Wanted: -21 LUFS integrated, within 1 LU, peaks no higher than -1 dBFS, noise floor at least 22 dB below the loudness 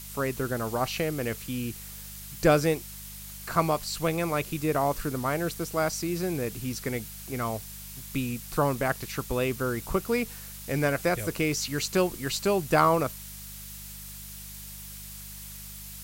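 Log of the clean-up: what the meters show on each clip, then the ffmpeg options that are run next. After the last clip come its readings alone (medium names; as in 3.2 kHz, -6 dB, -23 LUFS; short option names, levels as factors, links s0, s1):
hum 50 Hz; highest harmonic 200 Hz; hum level -45 dBFS; noise floor -42 dBFS; noise floor target -51 dBFS; loudness -28.5 LUFS; peak level -7.5 dBFS; loudness target -21.0 LUFS
-> -af "bandreject=f=50:t=h:w=4,bandreject=f=100:t=h:w=4,bandreject=f=150:t=h:w=4,bandreject=f=200:t=h:w=4"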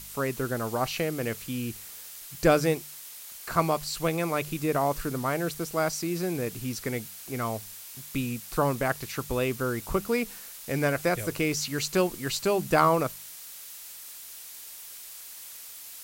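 hum not found; noise floor -44 dBFS; noise floor target -51 dBFS
-> -af "afftdn=nr=7:nf=-44"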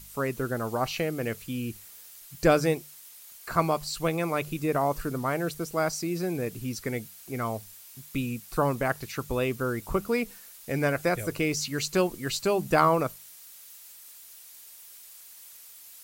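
noise floor -49 dBFS; noise floor target -51 dBFS
-> -af "afftdn=nr=6:nf=-49"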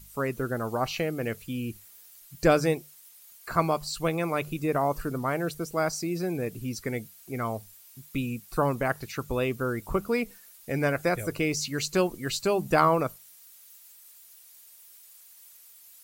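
noise floor -53 dBFS; loudness -28.5 LUFS; peak level -7.0 dBFS; loudness target -21.0 LUFS
-> -af "volume=2.37,alimiter=limit=0.891:level=0:latency=1"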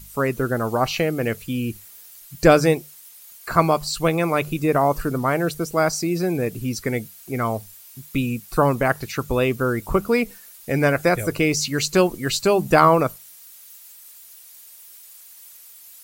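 loudness -21.5 LUFS; peak level -1.0 dBFS; noise floor -46 dBFS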